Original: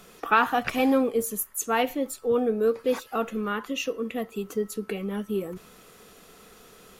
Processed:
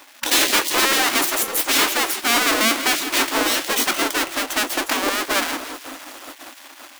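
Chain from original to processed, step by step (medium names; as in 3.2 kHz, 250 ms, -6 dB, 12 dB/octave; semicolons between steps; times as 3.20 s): square wave that keeps the level; two-band feedback delay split 310 Hz, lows 552 ms, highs 164 ms, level -14.5 dB; waveshaping leveller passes 3; spectral gate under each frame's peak -15 dB weak; resonant low shelf 190 Hz -12.5 dB, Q 3; trim +2.5 dB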